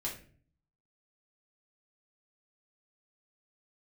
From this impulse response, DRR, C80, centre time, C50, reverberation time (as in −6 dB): −4.5 dB, 12.5 dB, 24 ms, 7.5 dB, 0.45 s